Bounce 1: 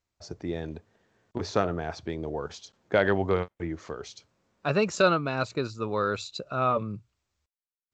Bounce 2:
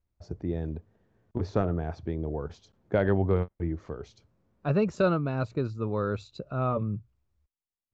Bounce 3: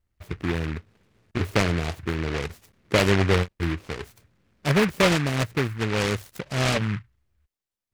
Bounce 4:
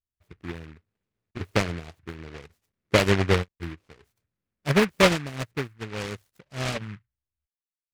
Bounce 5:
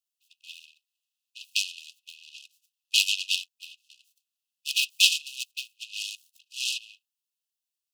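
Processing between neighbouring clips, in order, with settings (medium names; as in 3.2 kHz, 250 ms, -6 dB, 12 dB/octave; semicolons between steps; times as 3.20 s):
tilt EQ -3.5 dB/octave; trim -5.5 dB
delay time shaken by noise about 1.6 kHz, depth 0.22 ms; trim +4.5 dB
upward expansion 2.5:1, over -32 dBFS; trim +3 dB
brick-wall FIR high-pass 2.5 kHz; trim +7.5 dB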